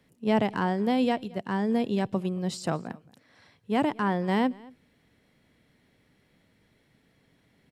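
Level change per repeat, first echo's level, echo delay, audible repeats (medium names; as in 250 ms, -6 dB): no regular repeats, -23.5 dB, 224 ms, 1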